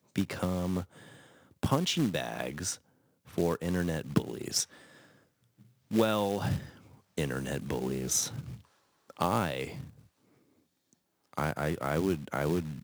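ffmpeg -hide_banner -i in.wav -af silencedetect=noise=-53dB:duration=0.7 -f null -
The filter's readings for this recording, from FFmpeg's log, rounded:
silence_start: 10.07
silence_end: 10.93 | silence_duration: 0.86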